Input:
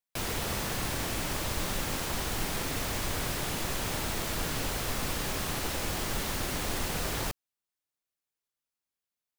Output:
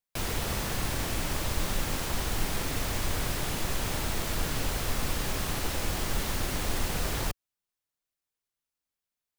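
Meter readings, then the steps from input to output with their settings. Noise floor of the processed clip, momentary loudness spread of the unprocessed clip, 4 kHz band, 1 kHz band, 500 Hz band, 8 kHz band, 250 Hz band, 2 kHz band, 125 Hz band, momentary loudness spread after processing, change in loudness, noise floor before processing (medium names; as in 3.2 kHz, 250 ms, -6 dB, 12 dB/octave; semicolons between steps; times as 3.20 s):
under -85 dBFS, 0 LU, 0.0 dB, 0.0 dB, 0.0 dB, 0.0 dB, +0.5 dB, 0.0 dB, +3.0 dB, 0 LU, +0.5 dB, under -85 dBFS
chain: bass shelf 78 Hz +7 dB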